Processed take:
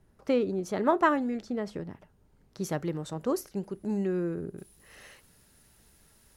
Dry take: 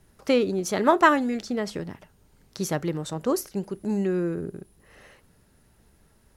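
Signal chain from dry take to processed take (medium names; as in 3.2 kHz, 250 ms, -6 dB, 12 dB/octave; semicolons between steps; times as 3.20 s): treble shelf 2 kHz -10 dB, from 2.64 s -4 dB, from 4.58 s +10.5 dB; trim -4 dB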